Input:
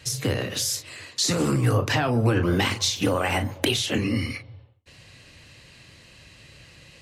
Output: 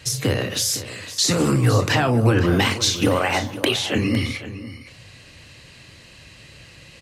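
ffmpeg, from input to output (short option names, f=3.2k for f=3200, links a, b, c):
-filter_complex "[0:a]asettb=1/sr,asplit=3[a][b][c];[a]atrim=end=3.194[d];[b]atrim=start=3.19:end=3.96,asetpts=PTS-STARTPTS,afade=t=in:d=0.004:c=qsin,afade=t=out:st=0.766:d=0.004:c=qsin,bass=f=250:g=-6,treble=f=4k:g=-5[e];[c]atrim=start=3.956[f];[d][e]acrossfade=d=0.004:c1=hsin:c2=qsin[g];[g][f]acrossfade=d=0.004:c1=qsin:c2=hsin,aecho=1:1:509:0.2,volume=4dB"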